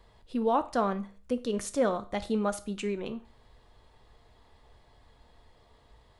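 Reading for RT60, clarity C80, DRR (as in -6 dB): 0.40 s, 21.5 dB, 10.5 dB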